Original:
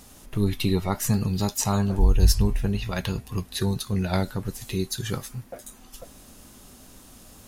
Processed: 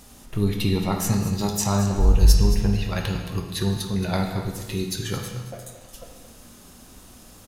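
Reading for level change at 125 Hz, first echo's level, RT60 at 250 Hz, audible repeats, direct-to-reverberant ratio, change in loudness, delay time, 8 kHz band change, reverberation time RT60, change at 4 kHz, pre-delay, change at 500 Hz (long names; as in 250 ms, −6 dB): +2.0 dB, −12.5 dB, 1.3 s, 2, 2.5 dB, +2.0 dB, 223 ms, +1.0 dB, 1.3 s, +1.5 dB, 17 ms, +1.5 dB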